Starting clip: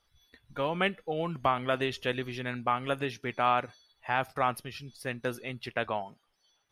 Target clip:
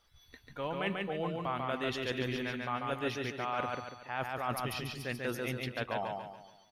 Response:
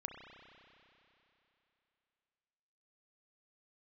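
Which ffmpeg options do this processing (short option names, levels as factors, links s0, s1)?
-af "areverse,acompressor=threshold=0.0158:ratio=6,areverse,equalizer=f=10000:w=5.7:g=-5.5,aecho=1:1:142|284|426|568|710:0.708|0.29|0.119|0.0488|0.02,volume=1.41"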